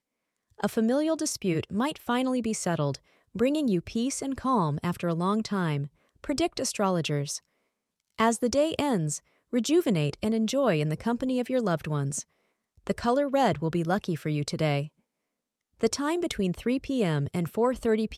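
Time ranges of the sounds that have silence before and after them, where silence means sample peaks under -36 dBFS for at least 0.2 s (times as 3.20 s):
0.60–2.95 s
3.35–5.86 s
6.24–7.37 s
8.19–9.18 s
9.53–12.21 s
12.87–14.86 s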